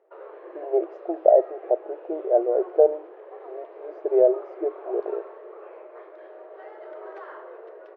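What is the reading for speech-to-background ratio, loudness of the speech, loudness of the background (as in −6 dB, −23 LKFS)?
19.5 dB, −23.5 LKFS, −43.0 LKFS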